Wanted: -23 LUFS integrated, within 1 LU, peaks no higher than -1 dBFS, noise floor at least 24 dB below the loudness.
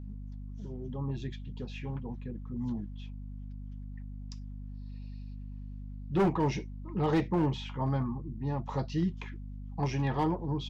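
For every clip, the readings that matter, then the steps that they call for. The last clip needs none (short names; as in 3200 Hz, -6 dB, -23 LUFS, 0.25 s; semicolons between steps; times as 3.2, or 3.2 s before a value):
clipped 0.6%; flat tops at -21.5 dBFS; hum 50 Hz; harmonics up to 250 Hz; hum level -39 dBFS; loudness -34.0 LUFS; peak -21.5 dBFS; loudness target -23.0 LUFS
-> clip repair -21.5 dBFS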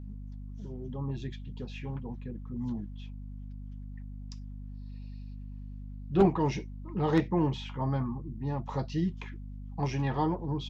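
clipped 0.0%; hum 50 Hz; harmonics up to 250 Hz; hum level -39 dBFS
-> notches 50/100/150/200/250 Hz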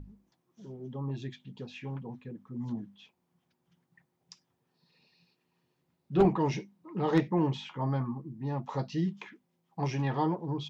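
hum none; loudness -32.5 LUFS; peak -11.5 dBFS; loudness target -23.0 LUFS
-> gain +9.5 dB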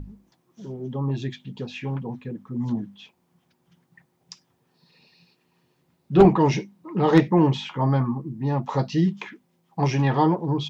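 loudness -23.0 LUFS; peak -2.0 dBFS; noise floor -69 dBFS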